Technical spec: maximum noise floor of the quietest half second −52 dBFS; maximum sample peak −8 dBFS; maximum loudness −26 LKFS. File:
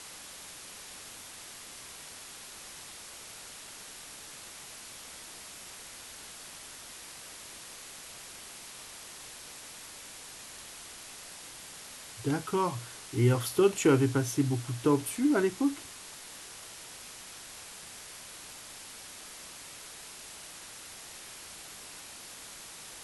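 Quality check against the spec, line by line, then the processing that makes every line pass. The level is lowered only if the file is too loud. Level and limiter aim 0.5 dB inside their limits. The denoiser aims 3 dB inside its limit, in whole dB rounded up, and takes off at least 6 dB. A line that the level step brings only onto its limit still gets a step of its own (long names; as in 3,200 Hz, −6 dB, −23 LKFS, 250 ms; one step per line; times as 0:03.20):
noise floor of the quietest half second −47 dBFS: out of spec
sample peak −12.0 dBFS: in spec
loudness −35.5 LKFS: in spec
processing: broadband denoise 8 dB, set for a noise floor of −47 dBFS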